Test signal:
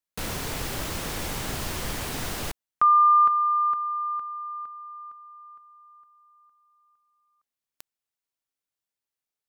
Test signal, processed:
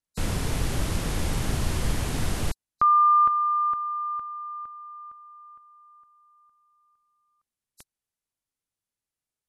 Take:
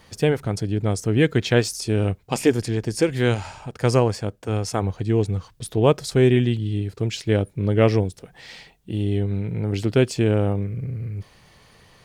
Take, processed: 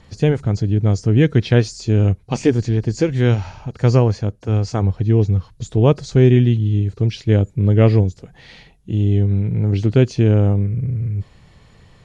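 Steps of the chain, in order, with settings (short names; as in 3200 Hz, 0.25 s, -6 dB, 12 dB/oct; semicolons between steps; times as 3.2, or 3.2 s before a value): nonlinear frequency compression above 3800 Hz 1.5:1; low shelf 250 Hz +11.5 dB; gain -1.5 dB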